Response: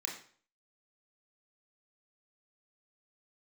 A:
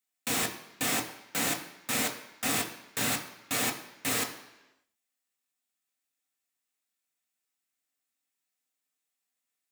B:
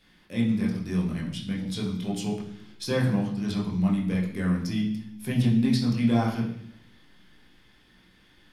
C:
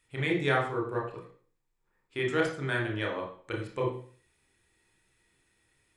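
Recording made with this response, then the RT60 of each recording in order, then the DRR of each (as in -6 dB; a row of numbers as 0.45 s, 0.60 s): C; 1.0 s, 0.70 s, 0.50 s; 2.0 dB, -4.0 dB, -1.0 dB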